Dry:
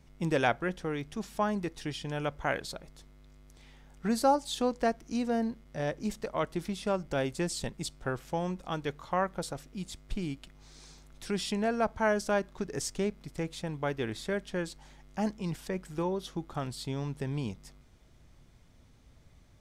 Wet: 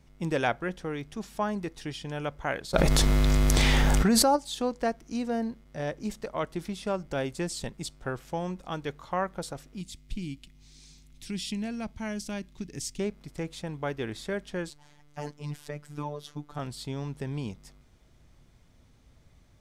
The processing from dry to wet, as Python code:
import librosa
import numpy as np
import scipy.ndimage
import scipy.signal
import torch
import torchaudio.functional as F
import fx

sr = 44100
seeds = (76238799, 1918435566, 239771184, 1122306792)

y = fx.env_flatten(x, sr, amount_pct=100, at=(2.73, 4.35), fade=0.02)
y = fx.band_shelf(y, sr, hz=810.0, db=-12.5, octaves=2.4, at=(9.81, 13.0))
y = fx.robotise(y, sr, hz=147.0, at=(14.7, 16.59))